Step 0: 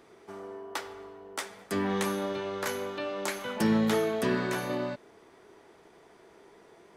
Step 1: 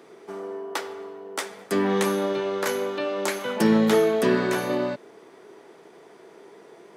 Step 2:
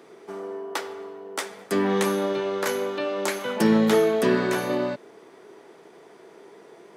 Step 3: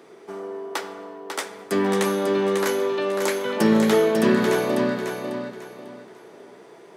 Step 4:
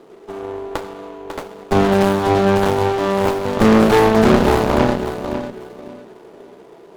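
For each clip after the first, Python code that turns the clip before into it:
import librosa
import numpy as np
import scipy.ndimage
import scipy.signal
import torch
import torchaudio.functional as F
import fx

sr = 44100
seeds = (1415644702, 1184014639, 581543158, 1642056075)

y1 = scipy.signal.sosfilt(scipy.signal.butter(4, 130.0, 'highpass', fs=sr, output='sos'), x)
y1 = fx.peak_eq(y1, sr, hz=430.0, db=4.0, octaves=0.83)
y1 = y1 * librosa.db_to_amplitude(5.0)
y2 = y1
y3 = fx.echo_feedback(y2, sr, ms=546, feedback_pct=28, wet_db=-6)
y3 = y3 * librosa.db_to_amplitude(1.0)
y4 = scipy.ndimage.median_filter(y3, 25, mode='constant')
y4 = fx.cheby_harmonics(y4, sr, harmonics=(6,), levels_db=(-10,), full_scale_db=-7.5)
y4 = y4 * librosa.db_to_amplitude(5.0)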